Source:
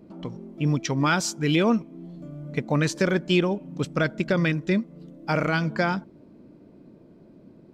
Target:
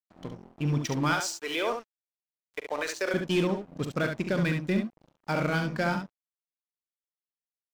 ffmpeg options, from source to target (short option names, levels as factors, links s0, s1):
-filter_complex "[0:a]asettb=1/sr,asplit=3[s0][s1][s2];[s0]atrim=end=1.134[s3];[s1]atrim=start=1.13:end=3.14,asetpts=PTS-STARTPTS,afade=t=in:d=0.004:c=qsin,afade=t=out:st=2.006:d=0.004:c=qsin,highpass=f=420:w=0.5412,highpass=f=420:w=1.3066[s4];[s2]atrim=start=3.136[s5];[s3][s4]acrossfade=d=0.004:c1=hsin:c2=qsin[s6];[s6][s5]acrossfade=d=0.004:c1=qsin:c2=hsin,aeval=exprs='sgn(val(0))*max(abs(val(0))-0.0119,0)':c=same,aeval=exprs='0.355*(cos(1*acos(clip(val(0)/0.355,-1,1)))-cos(1*PI/2))+0.0447*(cos(5*acos(clip(val(0)/0.355,-1,1)))-cos(5*PI/2))':c=same,aecho=1:1:42|69:0.224|0.501,volume=0.473"